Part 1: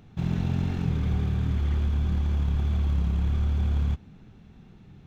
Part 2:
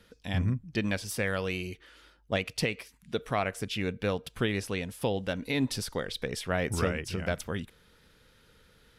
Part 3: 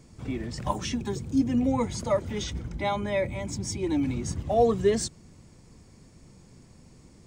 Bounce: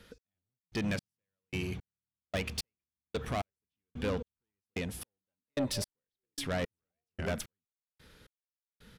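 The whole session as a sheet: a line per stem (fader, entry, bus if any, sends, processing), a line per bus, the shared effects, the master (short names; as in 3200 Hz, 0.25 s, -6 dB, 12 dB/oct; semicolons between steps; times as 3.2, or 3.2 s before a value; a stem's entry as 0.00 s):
-12.5 dB, 0.65 s, no send, HPF 110 Hz 12 dB/oct
+2.0 dB, 0.00 s, no send, soft clip -30.5 dBFS, distortion -8 dB
-15.0 dB, 2.40 s, no send, compressor, threshold -28 dBFS, peak gain reduction 11.5 dB; stepped low-pass 3.8 Hz 210–2100 Hz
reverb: off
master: step gate "xx......x" 167 bpm -60 dB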